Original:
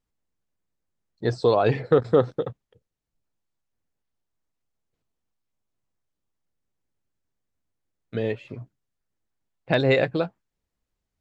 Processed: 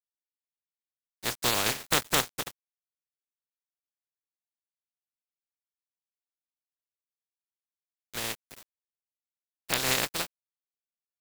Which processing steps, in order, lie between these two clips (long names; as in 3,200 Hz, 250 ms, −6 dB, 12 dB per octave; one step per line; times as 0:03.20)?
compressing power law on the bin magnitudes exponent 0.16
pitch vibrato 1.6 Hz 52 cents
centre clipping without the shift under −30.5 dBFS
level −7 dB